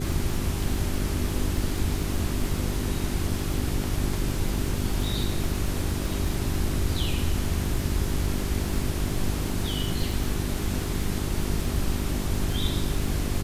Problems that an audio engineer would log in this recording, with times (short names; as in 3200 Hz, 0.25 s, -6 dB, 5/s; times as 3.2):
crackle 44/s -31 dBFS
hum 50 Hz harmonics 8 -31 dBFS